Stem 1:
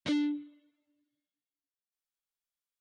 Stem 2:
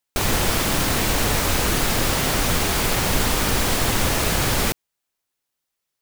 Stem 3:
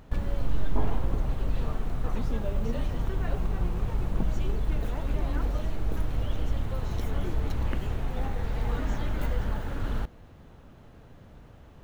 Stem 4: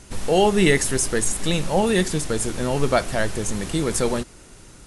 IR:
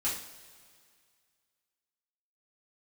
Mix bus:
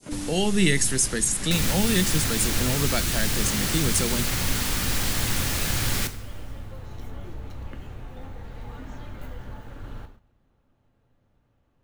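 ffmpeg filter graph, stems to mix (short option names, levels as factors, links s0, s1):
-filter_complex "[0:a]lowpass=1300,volume=0.75[s0];[1:a]adelay=1350,volume=0.531,asplit=2[s1][s2];[s2]volume=0.251[s3];[2:a]volume=0.316,asplit=2[s4][s5];[s5]volume=0.398[s6];[3:a]highpass=f=130:w=0.5412,highpass=f=130:w=1.3066,volume=1.12[s7];[4:a]atrim=start_sample=2205[s8];[s3][s6]amix=inputs=2:normalize=0[s9];[s9][s8]afir=irnorm=-1:irlink=0[s10];[s0][s1][s4][s7][s10]amix=inputs=5:normalize=0,agate=range=0.316:threshold=0.00447:ratio=16:detection=peak,adynamicequalizer=threshold=0.0126:dfrequency=1700:dqfactor=1.1:tfrequency=1700:tqfactor=1.1:attack=5:release=100:ratio=0.375:range=3:mode=boostabove:tftype=bell,acrossover=split=260|3000[s11][s12][s13];[s12]acompressor=threshold=0.00891:ratio=2[s14];[s11][s14][s13]amix=inputs=3:normalize=0"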